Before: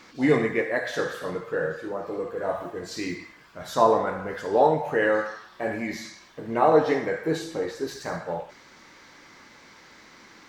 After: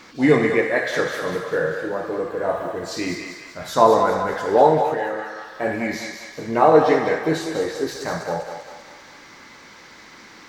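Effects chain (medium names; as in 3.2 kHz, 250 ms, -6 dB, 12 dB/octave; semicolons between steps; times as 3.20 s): 4.89–5.48 s: compression 4:1, threshold -32 dBFS, peak gain reduction 11.5 dB; on a send: thinning echo 197 ms, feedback 54%, high-pass 510 Hz, level -6 dB; on the sum: trim +5 dB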